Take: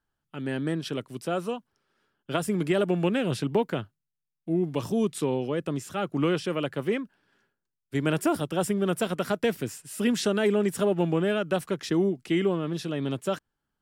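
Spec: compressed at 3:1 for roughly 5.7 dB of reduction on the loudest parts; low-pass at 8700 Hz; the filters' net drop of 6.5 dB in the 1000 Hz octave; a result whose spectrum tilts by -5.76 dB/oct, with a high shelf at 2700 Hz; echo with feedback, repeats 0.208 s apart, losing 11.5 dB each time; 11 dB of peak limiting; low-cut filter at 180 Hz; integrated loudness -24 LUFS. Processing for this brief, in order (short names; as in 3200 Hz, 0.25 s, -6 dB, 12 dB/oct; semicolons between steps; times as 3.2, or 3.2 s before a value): HPF 180 Hz; LPF 8700 Hz; bell 1000 Hz -8.5 dB; high shelf 2700 Hz -7 dB; compressor 3:1, threshold -29 dBFS; limiter -29.5 dBFS; feedback echo 0.208 s, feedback 27%, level -11.5 dB; gain +15 dB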